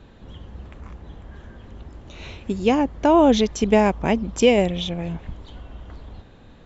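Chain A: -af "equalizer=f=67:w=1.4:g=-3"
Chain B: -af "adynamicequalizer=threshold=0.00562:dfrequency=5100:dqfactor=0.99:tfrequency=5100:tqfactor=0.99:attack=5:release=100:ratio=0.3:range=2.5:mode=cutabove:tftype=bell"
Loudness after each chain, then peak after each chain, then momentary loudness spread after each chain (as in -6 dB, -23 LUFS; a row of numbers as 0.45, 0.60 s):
-19.5, -19.5 LUFS; -4.5, -4.5 dBFS; 15, 18 LU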